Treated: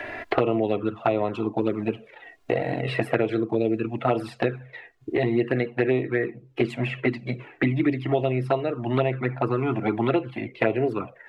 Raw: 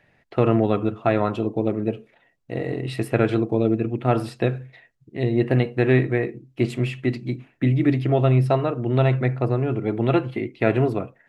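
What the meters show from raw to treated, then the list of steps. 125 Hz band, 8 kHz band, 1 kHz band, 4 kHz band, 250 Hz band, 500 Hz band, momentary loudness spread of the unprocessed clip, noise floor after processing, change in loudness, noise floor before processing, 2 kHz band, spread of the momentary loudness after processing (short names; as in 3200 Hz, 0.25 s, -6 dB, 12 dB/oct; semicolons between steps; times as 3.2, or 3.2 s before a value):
-8.0 dB, n/a, -1.0 dB, -0.5 dB, -3.0 dB, -1.5 dB, 10 LU, -53 dBFS, -3.0 dB, -63 dBFS, +0.5 dB, 6 LU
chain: tone controls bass -12 dB, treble -9 dB; envelope flanger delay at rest 3 ms, full sweep at -17 dBFS; three-band squash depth 100%; gain +2 dB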